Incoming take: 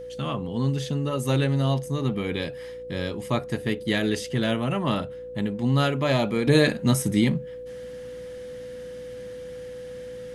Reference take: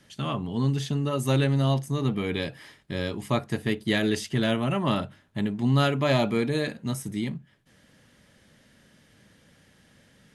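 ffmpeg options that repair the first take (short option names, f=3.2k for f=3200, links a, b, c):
-af "bandreject=f=58.6:t=h:w=4,bandreject=f=117.2:t=h:w=4,bandreject=f=175.8:t=h:w=4,bandreject=f=234.4:t=h:w=4,bandreject=f=293:t=h:w=4,bandreject=f=351.6:t=h:w=4,bandreject=f=500:w=30,asetnsamples=n=441:p=0,asendcmd='6.47 volume volume -9dB',volume=0dB"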